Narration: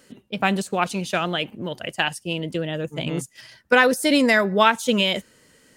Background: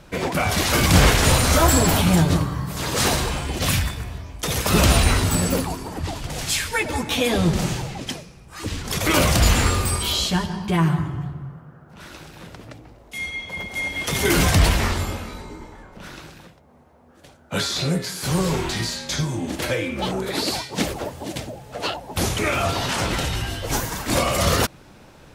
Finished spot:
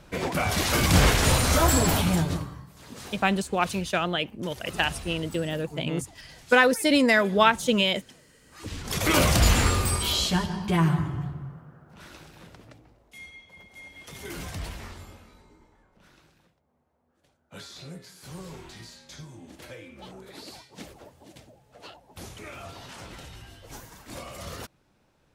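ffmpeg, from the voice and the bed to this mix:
ffmpeg -i stem1.wav -i stem2.wav -filter_complex "[0:a]adelay=2800,volume=-2.5dB[link_01];[1:a]volume=15dB,afade=type=out:start_time=1.93:duration=0.78:silence=0.125893,afade=type=in:start_time=8.38:duration=0.66:silence=0.105925,afade=type=out:start_time=11.21:duration=2.27:silence=0.149624[link_02];[link_01][link_02]amix=inputs=2:normalize=0" out.wav

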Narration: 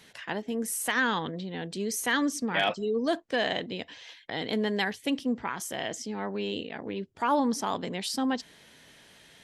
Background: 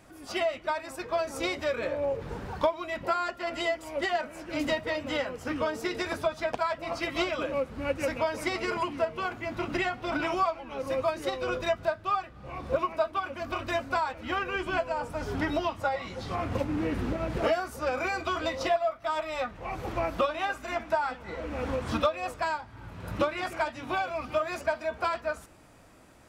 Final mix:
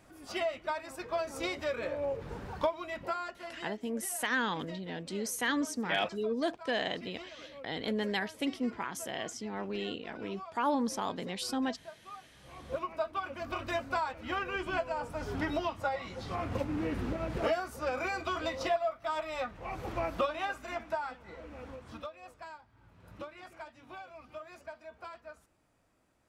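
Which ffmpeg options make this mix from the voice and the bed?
ffmpeg -i stem1.wav -i stem2.wav -filter_complex "[0:a]adelay=3350,volume=-4.5dB[link_01];[1:a]volume=11dB,afade=type=out:start_time=2.82:duration=0.98:silence=0.177828,afade=type=in:start_time=12.2:duration=1.12:silence=0.16788,afade=type=out:start_time=20.35:duration=1.48:silence=0.223872[link_02];[link_01][link_02]amix=inputs=2:normalize=0" out.wav

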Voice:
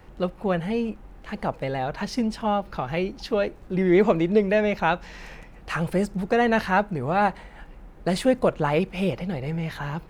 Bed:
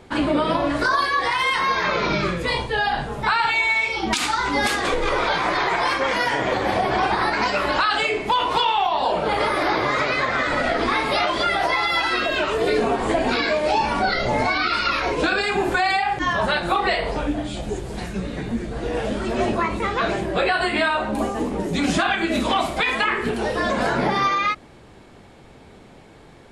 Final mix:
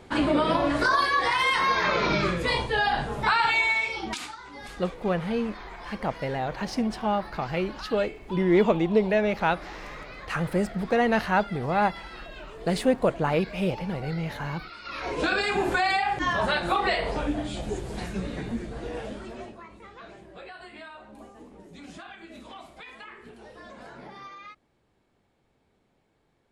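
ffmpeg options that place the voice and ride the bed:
ffmpeg -i stem1.wav -i stem2.wav -filter_complex "[0:a]adelay=4600,volume=-2dB[link_01];[1:a]volume=15dB,afade=type=out:start_time=3.56:duration=0.81:silence=0.112202,afade=type=in:start_time=14.83:duration=0.49:silence=0.133352,afade=type=out:start_time=18.27:duration=1.27:silence=0.105925[link_02];[link_01][link_02]amix=inputs=2:normalize=0" out.wav

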